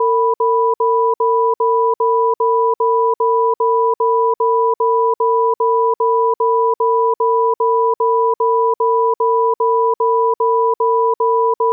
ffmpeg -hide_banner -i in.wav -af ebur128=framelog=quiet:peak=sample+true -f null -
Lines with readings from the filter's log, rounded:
Integrated loudness:
  I:         -15.2 LUFS
  Threshold: -25.2 LUFS
Loudness range:
  LRA:         0.1 LU
  Threshold: -35.2 LUFS
  LRA low:   -15.3 LUFS
  LRA high:  -15.1 LUFS
Sample peak:
  Peak:       -8.0 dBFS
True peak:
  Peak:       -8.0 dBFS